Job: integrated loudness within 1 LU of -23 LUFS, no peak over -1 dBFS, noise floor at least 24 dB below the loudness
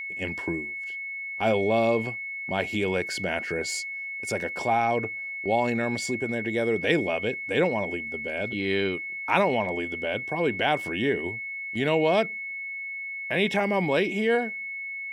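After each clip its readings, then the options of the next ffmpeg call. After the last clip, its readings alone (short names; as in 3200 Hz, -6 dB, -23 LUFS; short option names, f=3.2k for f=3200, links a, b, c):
steady tone 2200 Hz; tone level -32 dBFS; loudness -26.5 LUFS; peak -6.5 dBFS; loudness target -23.0 LUFS
-> -af "bandreject=f=2.2k:w=30"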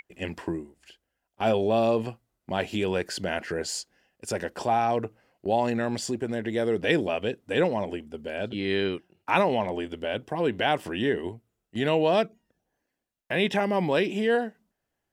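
steady tone none; loudness -27.5 LUFS; peak -7.0 dBFS; loudness target -23.0 LUFS
-> -af "volume=4.5dB"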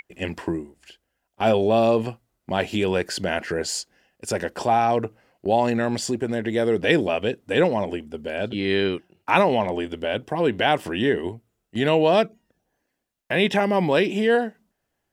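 loudness -23.0 LUFS; peak -2.5 dBFS; noise floor -78 dBFS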